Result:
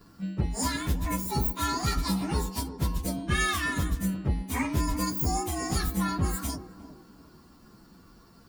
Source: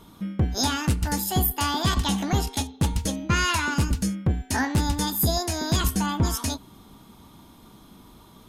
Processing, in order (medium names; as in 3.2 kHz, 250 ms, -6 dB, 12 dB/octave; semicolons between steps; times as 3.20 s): frequency axis rescaled in octaves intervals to 111%; band-passed feedback delay 356 ms, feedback 45%, band-pass 380 Hz, level -10 dB; trim -1.5 dB